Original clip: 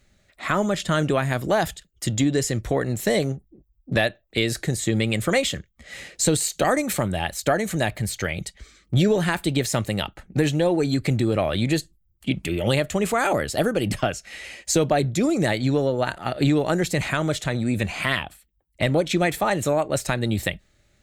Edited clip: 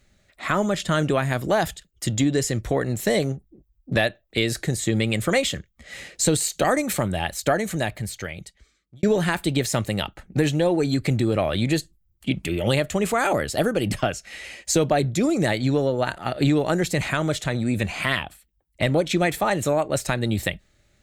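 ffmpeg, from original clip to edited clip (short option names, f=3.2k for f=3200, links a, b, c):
-filter_complex "[0:a]asplit=2[a][b];[a]atrim=end=9.03,asetpts=PTS-STARTPTS,afade=t=out:st=7.52:d=1.51[c];[b]atrim=start=9.03,asetpts=PTS-STARTPTS,afade=t=in:d=0.004:c=hsin[d];[c][d]concat=n=2:v=0:a=1"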